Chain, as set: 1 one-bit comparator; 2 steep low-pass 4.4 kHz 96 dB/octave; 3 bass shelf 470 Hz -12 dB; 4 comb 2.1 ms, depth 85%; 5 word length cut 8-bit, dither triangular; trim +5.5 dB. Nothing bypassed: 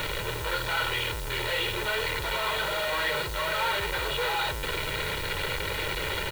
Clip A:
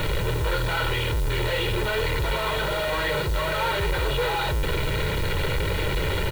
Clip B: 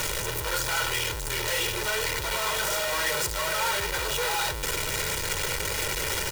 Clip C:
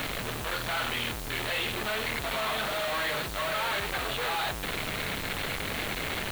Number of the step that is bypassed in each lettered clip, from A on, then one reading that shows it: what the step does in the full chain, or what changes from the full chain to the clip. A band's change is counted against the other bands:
3, 125 Hz band +10.0 dB; 2, 8 kHz band +11.5 dB; 4, 250 Hz band +5.0 dB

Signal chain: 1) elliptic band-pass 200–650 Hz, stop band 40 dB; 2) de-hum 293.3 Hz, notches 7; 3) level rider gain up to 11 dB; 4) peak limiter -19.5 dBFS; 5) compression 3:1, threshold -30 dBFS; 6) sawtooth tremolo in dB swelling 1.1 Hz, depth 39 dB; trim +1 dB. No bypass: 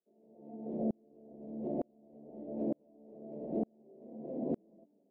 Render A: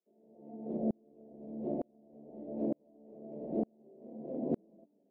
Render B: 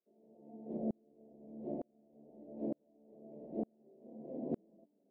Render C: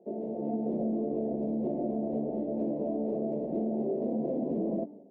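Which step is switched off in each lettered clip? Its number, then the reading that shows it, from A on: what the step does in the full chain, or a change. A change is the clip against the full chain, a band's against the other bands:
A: 4, crest factor change +3.5 dB; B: 3, crest factor change +4.5 dB; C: 6, momentary loudness spread change -16 LU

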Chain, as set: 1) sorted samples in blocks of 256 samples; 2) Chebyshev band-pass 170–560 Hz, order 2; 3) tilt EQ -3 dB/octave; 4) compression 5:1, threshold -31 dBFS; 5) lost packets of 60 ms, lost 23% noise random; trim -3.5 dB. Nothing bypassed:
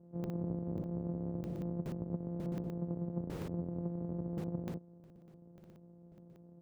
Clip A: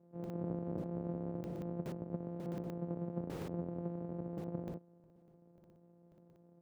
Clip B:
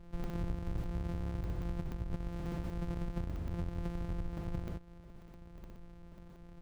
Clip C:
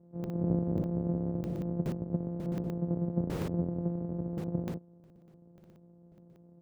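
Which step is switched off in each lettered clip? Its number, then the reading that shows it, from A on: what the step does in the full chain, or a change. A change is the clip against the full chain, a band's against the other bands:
3, 125 Hz band -4.0 dB; 2, 2 kHz band +9.5 dB; 4, mean gain reduction 3.5 dB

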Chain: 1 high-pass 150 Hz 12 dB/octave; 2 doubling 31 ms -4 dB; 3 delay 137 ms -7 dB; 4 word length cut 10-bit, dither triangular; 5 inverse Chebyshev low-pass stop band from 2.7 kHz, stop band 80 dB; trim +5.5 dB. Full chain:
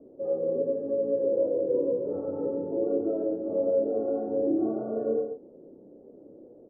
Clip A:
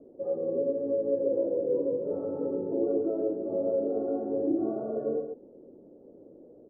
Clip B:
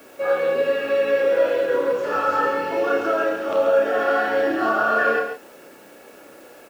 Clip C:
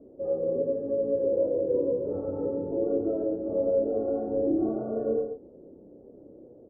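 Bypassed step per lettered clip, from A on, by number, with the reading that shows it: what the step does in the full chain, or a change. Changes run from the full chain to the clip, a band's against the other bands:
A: 2, loudness change -1.5 LU; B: 5, momentary loudness spread change -2 LU; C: 1, 125 Hz band +4.0 dB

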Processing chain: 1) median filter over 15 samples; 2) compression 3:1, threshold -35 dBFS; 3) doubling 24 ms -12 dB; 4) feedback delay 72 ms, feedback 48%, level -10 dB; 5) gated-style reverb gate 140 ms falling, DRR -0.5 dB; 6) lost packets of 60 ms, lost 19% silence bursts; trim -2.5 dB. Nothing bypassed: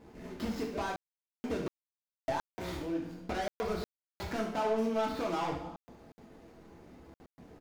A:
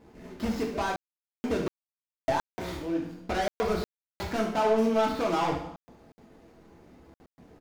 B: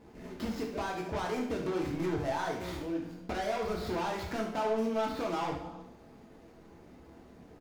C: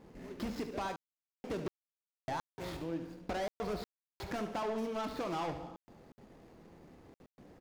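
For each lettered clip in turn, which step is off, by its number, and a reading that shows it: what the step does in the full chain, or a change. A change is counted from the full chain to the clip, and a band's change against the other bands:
2, momentary loudness spread change -10 LU; 6, 125 Hz band +1.5 dB; 5, momentary loudness spread change -2 LU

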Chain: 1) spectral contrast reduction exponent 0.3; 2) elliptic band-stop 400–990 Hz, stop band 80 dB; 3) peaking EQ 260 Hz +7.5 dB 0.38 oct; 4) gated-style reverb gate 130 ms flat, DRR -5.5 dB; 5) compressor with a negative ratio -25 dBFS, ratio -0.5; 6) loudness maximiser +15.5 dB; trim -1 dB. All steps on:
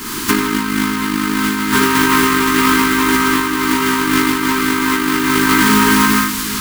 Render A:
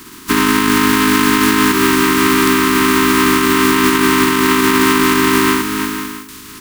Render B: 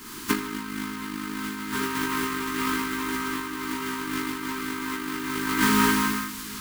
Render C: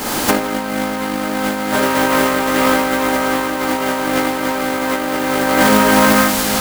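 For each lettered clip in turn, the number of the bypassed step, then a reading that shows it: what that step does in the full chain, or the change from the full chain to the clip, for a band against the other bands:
4, crest factor change -1.5 dB; 6, crest factor change +8.5 dB; 2, 500 Hz band +8.0 dB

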